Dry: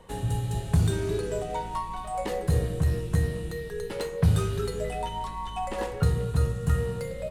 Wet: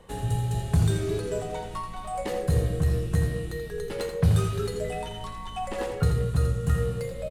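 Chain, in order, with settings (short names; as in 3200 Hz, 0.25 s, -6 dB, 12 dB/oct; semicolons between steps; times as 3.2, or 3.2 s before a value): notch 940 Hz, Q 18; on a send: echo 83 ms -8 dB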